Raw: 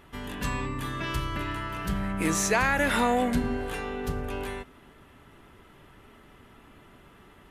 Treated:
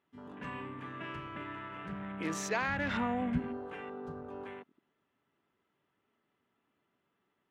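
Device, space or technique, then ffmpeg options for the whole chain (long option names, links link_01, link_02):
over-cleaned archive recording: -filter_complex "[0:a]highpass=160,lowpass=6300,afwtdn=0.0126,asplit=3[link_01][link_02][link_03];[link_01]afade=type=out:start_time=2.67:duration=0.02[link_04];[link_02]asubboost=boost=10:cutoff=140,afade=type=in:start_time=2.67:duration=0.02,afade=type=out:start_time=3.38:duration=0.02[link_05];[link_03]afade=type=in:start_time=3.38:duration=0.02[link_06];[link_04][link_05][link_06]amix=inputs=3:normalize=0,volume=-8.5dB"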